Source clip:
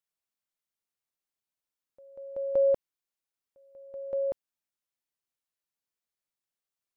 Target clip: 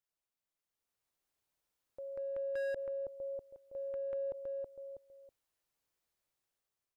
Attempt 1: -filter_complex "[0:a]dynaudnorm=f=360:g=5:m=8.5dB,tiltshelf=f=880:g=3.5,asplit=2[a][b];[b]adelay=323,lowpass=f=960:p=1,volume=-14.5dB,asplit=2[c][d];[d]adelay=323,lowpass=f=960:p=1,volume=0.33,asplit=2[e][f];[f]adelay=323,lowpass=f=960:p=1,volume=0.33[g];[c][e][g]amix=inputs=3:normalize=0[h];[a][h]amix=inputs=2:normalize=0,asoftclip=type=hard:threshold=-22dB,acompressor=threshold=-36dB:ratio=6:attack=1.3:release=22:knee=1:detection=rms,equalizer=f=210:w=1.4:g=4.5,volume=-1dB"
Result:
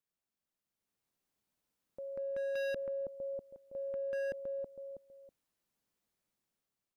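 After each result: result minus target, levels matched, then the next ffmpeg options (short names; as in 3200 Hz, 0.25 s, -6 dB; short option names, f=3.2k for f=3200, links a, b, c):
250 Hz band +6.0 dB; hard clip: distortion +7 dB
-filter_complex "[0:a]dynaudnorm=f=360:g=5:m=8.5dB,tiltshelf=f=880:g=3.5,asplit=2[a][b];[b]adelay=323,lowpass=f=960:p=1,volume=-14.5dB,asplit=2[c][d];[d]adelay=323,lowpass=f=960:p=1,volume=0.33,asplit=2[e][f];[f]adelay=323,lowpass=f=960:p=1,volume=0.33[g];[c][e][g]amix=inputs=3:normalize=0[h];[a][h]amix=inputs=2:normalize=0,asoftclip=type=hard:threshold=-22dB,acompressor=threshold=-36dB:ratio=6:attack=1.3:release=22:knee=1:detection=rms,equalizer=f=210:w=1.4:g=-7,volume=-1dB"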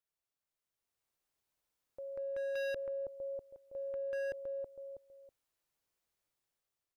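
hard clip: distortion +7 dB
-filter_complex "[0:a]dynaudnorm=f=360:g=5:m=8.5dB,tiltshelf=f=880:g=3.5,asplit=2[a][b];[b]adelay=323,lowpass=f=960:p=1,volume=-14.5dB,asplit=2[c][d];[d]adelay=323,lowpass=f=960:p=1,volume=0.33,asplit=2[e][f];[f]adelay=323,lowpass=f=960:p=1,volume=0.33[g];[c][e][g]amix=inputs=3:normalize=0[h];[a][h]amix=inputs=2:normalize=0,asoftclip=type=hard:threshold=-14.5dB,acompressor=threshold=-36dB:ratio=6:attack=1.3:release=22:knee=1:detection=rms,equalizer=f=210:w=1.4:g=-7,volume=-1dB"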